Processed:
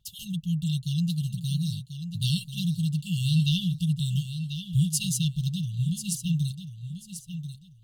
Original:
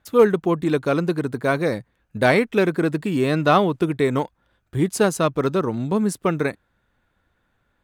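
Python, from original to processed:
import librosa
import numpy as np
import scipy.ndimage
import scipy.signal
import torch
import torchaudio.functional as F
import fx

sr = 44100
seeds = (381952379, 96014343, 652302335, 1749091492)

p1 = fx.brickwall_bandstop(x, sr, low_hz=180.0, high_hz=2700.0)
p2 = p1 + 0.36 * np.pad(p1, (int(5.8 * sr / 1000.0), 0))[:len(p1)]
p3 = p2 + fx.echo_feedback(p2, sr, ms=1039, feedback_pct=23, wet_db=-9.5, dry=0)
y = F.gain(torch.from_numpy(p3), 1.5).numpy()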